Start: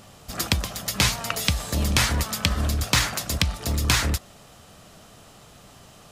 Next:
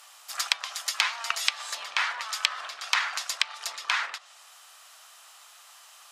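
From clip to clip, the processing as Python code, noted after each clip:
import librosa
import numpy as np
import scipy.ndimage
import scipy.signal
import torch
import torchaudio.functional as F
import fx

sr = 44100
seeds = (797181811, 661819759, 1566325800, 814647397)

y = fx.env_lowpass_down(x, sr, base_hz=2400.0, full_db=-17.5)
y = scipy.signal.sosfilt(scipy.signal.butter(4, 920.0, 'highpass', fs=sr, output='sos'), y)
y = fx.high_shelf(y, sr, hz=7900.0, db=4.0)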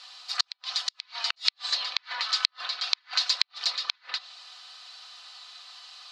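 y = x + 0.62 * np.pad(x, (int(4.0 * sr / 1000.0), 0))[:len(x)]
y = fx.gate_flip(y, sr, shuts_db=-13.0, range_db=-42)
y = fx.lowpass_res(y, sr, hz=4300.0, q=5.2)
y = y * librosa.db_to_amplitude(-1.5)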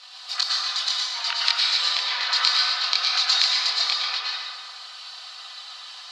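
y = fx.chorus_voices(x, sr, voices=6, hz=0.55, base_ms=24, depth_ms=1.9, mix_pct=45)
y = y + 10.0 ** (-7.0 / 20.0) * np.pad(y, (int(116 * sr / 1000.0), 0))[:len(y)]
y = fx.rev_plate(y, sr, seeds[0], rt60_s=1.8, hf_ratio=0.5, predelay_ms=95, drr_db=-3.5)
y = y * librosa.db_to_amplitude(5.5)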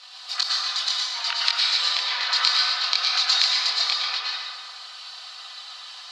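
y = fx.end_taper(x, sr, db_per_s=250.0)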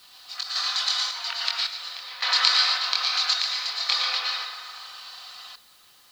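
y = fx.echo_wet_bandpass(x, sr, ms=81, feedback_pct=80, hz=860.0, wet_db=-7.0)
y = fx.tremolo_random(y, sr, seeds[1], hz=1.8, depth_pct=90)
y = fx.quant_dither(y, sr, seeds[2], bits=10, dither='triangular')
y = y * librosa.db_to_amplitude(1.5)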